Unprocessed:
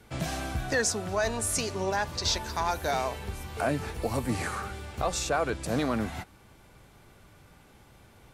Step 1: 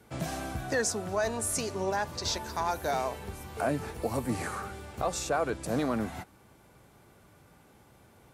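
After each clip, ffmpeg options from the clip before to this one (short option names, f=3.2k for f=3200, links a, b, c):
-af "highpass=f=120:p=1,equalizer=f=3.2k:t=o:w=2.3:g=-5.5"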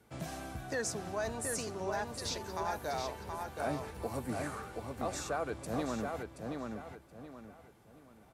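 -filter_complex "[0:a]asplit=2[a][b];[b]adelay=726,lowpass=f=4.3k:p=1,volume=-4dB,asplit=2[c][d];[d]adelay=726,lowpass=f=4.3k:p=1,volume=0.33,asplit=2[e][f];[f]adelay=726,lowpass=f=4.3k:p=1,volume=0.33,asplit=2[g][h];[h]adelay=726,lowpass=f=4.3k:p=1,volume=0.33[i];[a][c][e][g][i]amix=inputs=5:normalize=0,volume=-7dB"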